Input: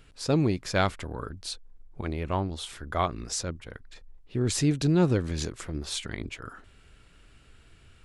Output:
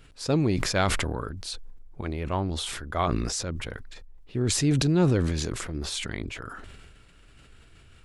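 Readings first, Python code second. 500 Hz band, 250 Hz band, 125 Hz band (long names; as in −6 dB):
+1.0 dB, +1.0 dB, +2.0 dB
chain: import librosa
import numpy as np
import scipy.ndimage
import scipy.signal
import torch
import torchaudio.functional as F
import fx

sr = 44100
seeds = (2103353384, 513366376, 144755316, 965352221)

y = fx.sustainer(x, sr, db_per_s=27.0)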